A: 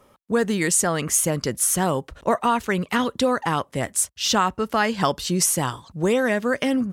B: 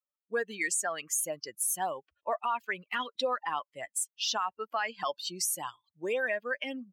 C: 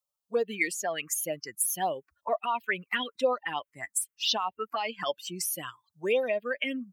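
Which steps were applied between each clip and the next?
per-bin expansion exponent 2; HPF 670 Hz 12 dB/oct; limiter -21 dBFS, peak gain reduction 9.5 dB
envelope phaser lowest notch 320 Hz, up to 1700 Hz, full sweep at -26.5 dBFS; gain +7 dB

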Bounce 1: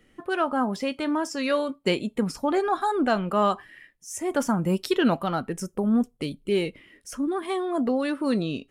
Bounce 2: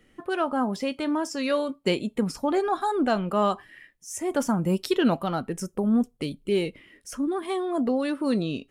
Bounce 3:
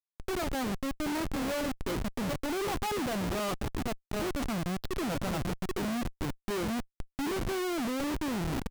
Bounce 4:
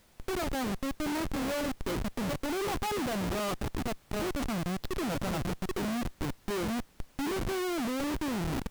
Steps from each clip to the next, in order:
dynamic EQ 1600 Hz, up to -3 dB, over -38 dBFS, Q 0.96
low-pass opened by the level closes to 1200 Hz, open at -18.5 dBFS; feedback echo 0.78 s, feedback 21%, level -9 dB; Schmitt trigger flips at -28.5 dBFS; gain -4.5 dB
added noise pink -62 dBFS

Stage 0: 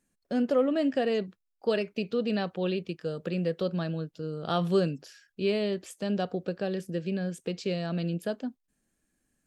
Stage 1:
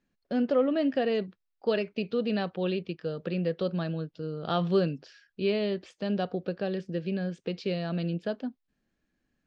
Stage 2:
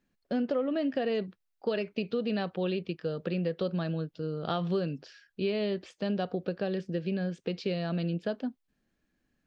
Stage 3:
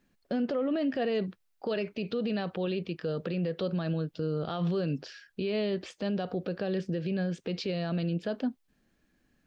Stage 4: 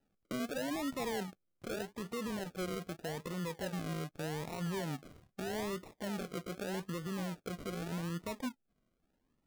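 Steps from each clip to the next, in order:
LPF 4900 Hz 24 dB/oct
compressor, threshold -27 dBFS, peak gain reduction 7.5 dB; gain +1 dB
limiter -29 dBFS, peak gain reduction 11.5 dB; gain +6 dB
decimation with a swept rate 39×, swing 60% 0.82 Hz; gain -8 dB

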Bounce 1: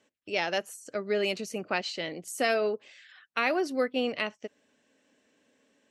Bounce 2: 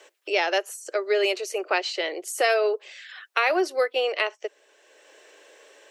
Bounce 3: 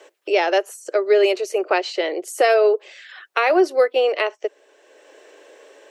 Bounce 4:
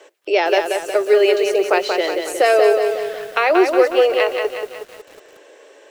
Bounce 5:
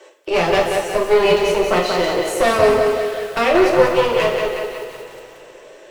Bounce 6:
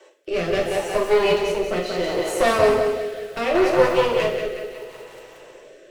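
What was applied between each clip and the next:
elliptic high-pass 360 Hz, stop band 40 dB; three-band squash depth 40%; gain +6.5 dB
tilt shelf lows +5 dB; gain +4.5 dB
lo-fi delay 0.182 s, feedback 55%, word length 7-bit, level -5 dB; gain +1.5 dB
one-sided clip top -22.5 dBFS; two-slope reverb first 0.52 s, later 3.8 s, from -18 dB, DRR -1 dB; gain -1 dB
rotary speaker horn 0.7 Hz; gain -2.5 dB

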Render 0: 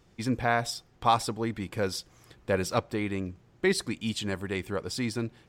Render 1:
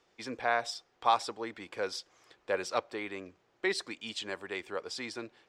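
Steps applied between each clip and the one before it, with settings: three-band isolator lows -21 dB, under 350 Hz, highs -18 dB, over 7600 Hz; gain -2.5 dB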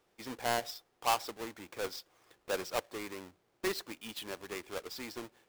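half-waves squared off; gain -7.5 dB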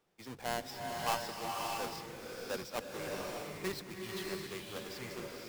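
octaver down 1 oct, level -1 dB; bloom reverb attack 0.62 s, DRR -1 dB; gain -5 dB

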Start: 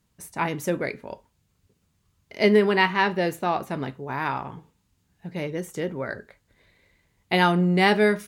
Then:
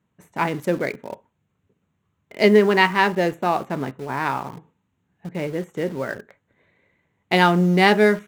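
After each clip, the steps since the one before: Wiener smoothing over 9 samples; HPF 120 Hz 12 dB/oct; in parallel at -10 dB: bit-crush 6-bit; on the sum: gain +1.5 dB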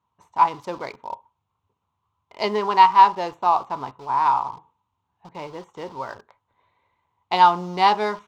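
EQ curve 100 Hz 0 dB, 170 Hz -11 dB, 610 Hz -3 dB, 980 Hz +15 dB, 1700 Hz -8 dB, 3200 Hz +2 dB, 5100 Hz +4 dB, 11000 Hz -14 dB; gain -4.5 dB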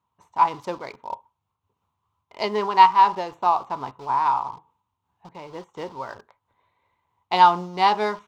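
noise-modulated level, depth 60%; gain +2 dB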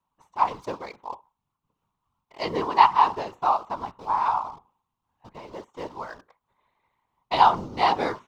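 whisperiser; gain -2.5 dB

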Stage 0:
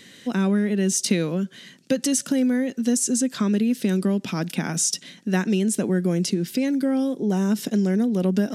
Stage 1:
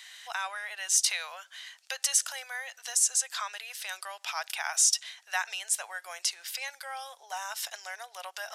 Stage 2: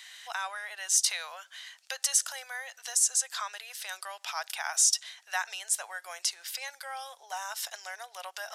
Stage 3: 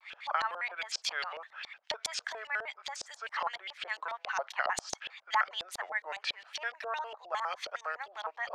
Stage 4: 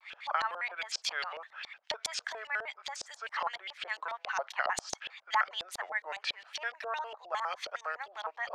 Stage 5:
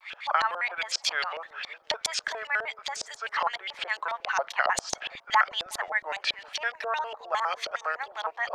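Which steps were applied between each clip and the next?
steep high-pass 730 Hz 48 dB/oct
dynamic EQ 2500 Hz, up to -4 dB, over -46 dBFS, Q 2
LFO low-pass saw up 7.3 Hz 640–3900 Hz; shaped vibrato square 4.9 Hz, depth 250 cents
nothing audible
dark delay 0.364 s, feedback 58%, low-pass 410 Hz, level -11.5 dB; gain +6.5 dB

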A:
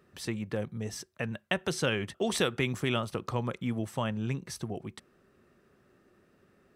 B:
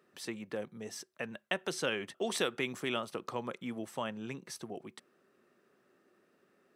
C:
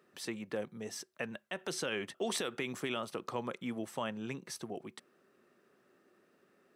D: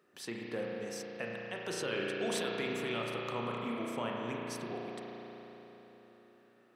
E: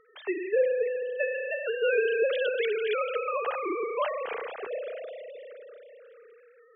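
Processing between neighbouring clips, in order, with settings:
HPF 250 Hz 12 dB/oct; gain -3.5 dB
limiter -25.5 dBFS, peak gain reduction 11 dB; gain +1 dB
spring tank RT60 3.9 s, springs 34 ms, chirp 25 ms, DRR -2.5 dB; gain -2.5 dB
sine-wave speech; gain +9 dB

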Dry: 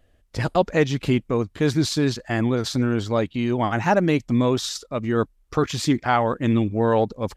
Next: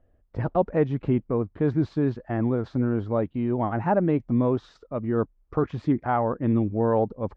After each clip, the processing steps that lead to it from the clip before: LPF 1100 Hz 12 dB/oct; gain -2.5 dB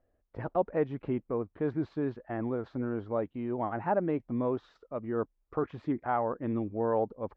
tone controls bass -8 dB, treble -10 dB; gain -5 dB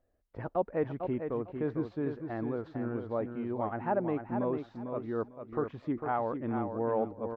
feedback echo 0.45 s, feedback 20%, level -7 dB; gain -2 dB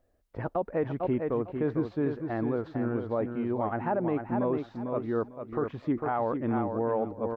limiter -24 dBFS, peak gain reduction 6.5 dB; gain +5 dB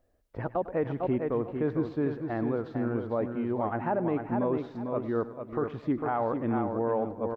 feedback echo 0.102 s, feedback 38%, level -16 dB

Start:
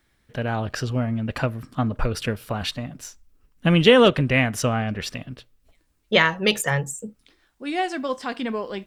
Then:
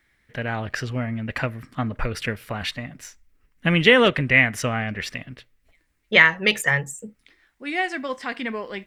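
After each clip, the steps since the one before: bell 2000 Hz +11.5 dB 0.67 oct; gain -3 dB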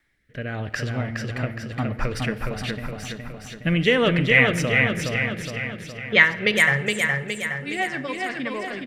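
rotary speaker horn 0.85 Hz, later 8 Hz, at 4.8; feedback echo 0.416 s, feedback 54%, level -3.5 dB; reverb RT60 1.6 s, pre-delay 7 ms, DRR 13.5 dB

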